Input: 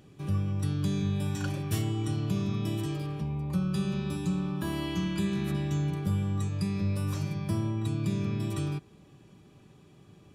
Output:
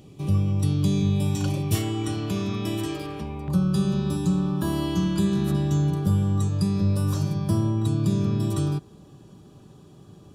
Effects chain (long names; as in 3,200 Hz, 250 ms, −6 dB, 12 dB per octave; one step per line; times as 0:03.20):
parametric band 1,600 Hz −14 dB 0.59 octaves, from 0:01.75 140 Hz, from 0:03.48 2,200 Hz
level +7 dB